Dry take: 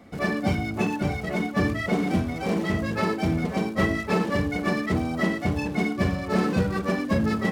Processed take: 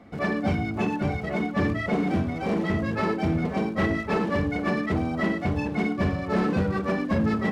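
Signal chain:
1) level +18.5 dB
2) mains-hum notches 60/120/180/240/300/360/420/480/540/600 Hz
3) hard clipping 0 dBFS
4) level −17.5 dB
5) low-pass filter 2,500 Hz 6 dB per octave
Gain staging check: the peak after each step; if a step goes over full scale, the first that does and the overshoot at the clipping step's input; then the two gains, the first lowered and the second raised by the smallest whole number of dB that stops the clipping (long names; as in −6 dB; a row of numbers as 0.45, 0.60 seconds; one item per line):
+8.5, +8.0, 0.0, −17.5, −17.5 dBFS
step 1, 8.0 dB
step 1 +10.5 dB, step 4 −9.5 dB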